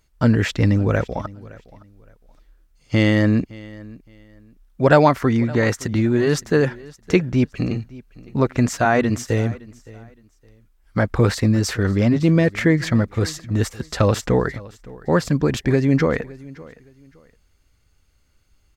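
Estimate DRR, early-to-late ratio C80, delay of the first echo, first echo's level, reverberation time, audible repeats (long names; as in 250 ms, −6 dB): no reverb audible, no reverb audible, 565 ms, −21.0 dB, no reverb audible, 2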